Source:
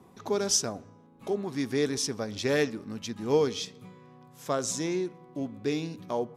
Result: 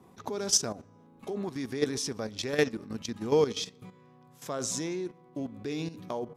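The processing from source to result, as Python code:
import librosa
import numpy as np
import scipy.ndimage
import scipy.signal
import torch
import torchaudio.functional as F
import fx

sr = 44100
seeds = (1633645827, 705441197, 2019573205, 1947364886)

y = fx.level_steps(x, sr, step_db=12)
y = y * 10.0 ** (3.0 / 20.0)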